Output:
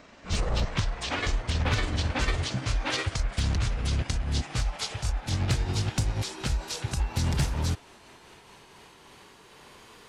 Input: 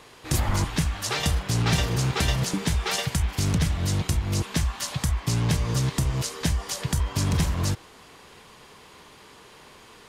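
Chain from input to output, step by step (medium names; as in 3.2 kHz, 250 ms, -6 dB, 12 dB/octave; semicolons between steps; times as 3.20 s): pitch bend over the whole clip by -9.5 st ending unshifted; overload inside the chain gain 16 dB; trim -1.5 dB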